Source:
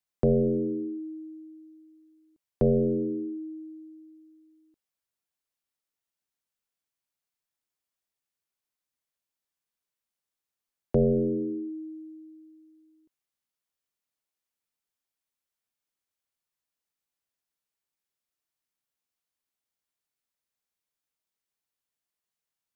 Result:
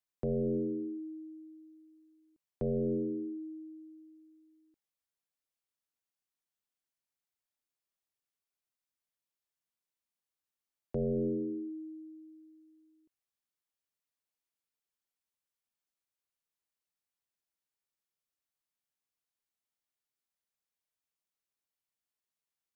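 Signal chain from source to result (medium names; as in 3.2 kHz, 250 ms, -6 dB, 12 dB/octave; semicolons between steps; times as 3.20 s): peak limiter -23 dBFS, peak gain reduction 7 dB; trim -5 dB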